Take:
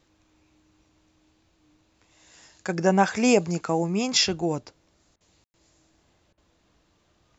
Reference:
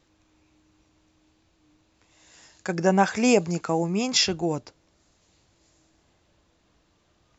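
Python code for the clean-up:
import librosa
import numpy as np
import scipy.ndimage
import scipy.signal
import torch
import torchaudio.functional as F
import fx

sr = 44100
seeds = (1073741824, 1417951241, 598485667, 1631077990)

y = fx.fix_ambience(x, sr, seeds[0], print_start_s=6.17, print_end_s=6.67, start_s=5.44, end_s=5.54)
y = fx.fix_interpolate(y, sr, at_s=(5.16, 6.33), length_ms=45.0)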